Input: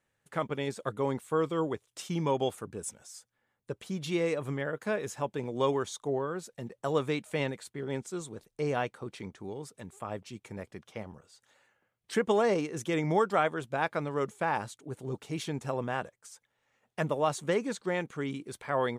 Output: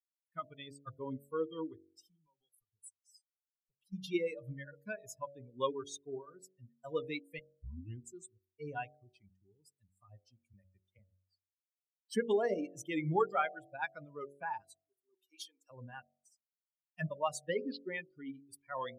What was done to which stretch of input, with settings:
1.88–3.93 s: compression 3:1, threshold -46 dBFS
7.39 s: tape start 0.63 s
10.53–10.99 s: three bands compressed up and down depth 70%
14.62–15.71 s: high-pass 480 Hz
17.45–18.43 s: careless resampling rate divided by 4×, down none, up filtered
whole clip: expander on every frequency bin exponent 3; de-hum 46.9 Hz, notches 16; dynamic bell 660 Hz, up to -3 dB, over -46 dBFS, Q 2.6; trim +1 dB

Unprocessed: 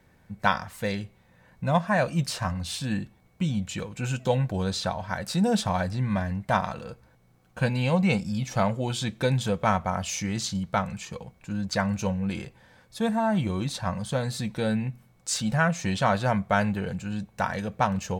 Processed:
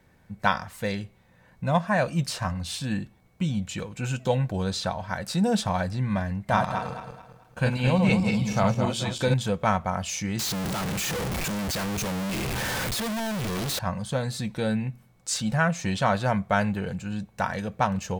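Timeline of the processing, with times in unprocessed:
6.35–9.34 s: backward echo that repeats 109 ms, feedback 58%, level -4 dB
10.39–13.79 s: one-bit comparator

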